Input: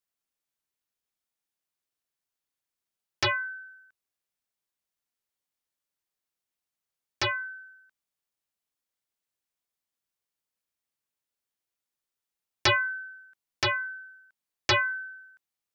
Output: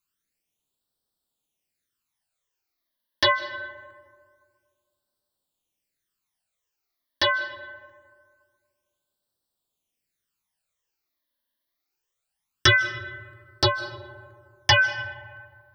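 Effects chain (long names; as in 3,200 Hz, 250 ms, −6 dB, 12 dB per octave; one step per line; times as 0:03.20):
all-pass phaser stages 12, 0.24 Hz, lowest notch 130–2,300 Hz
comb and all-pass reverb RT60 1.9 s, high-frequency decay 0.4×, pre-delay 115 ms, DRR 13.5 dB
level +8.5 dB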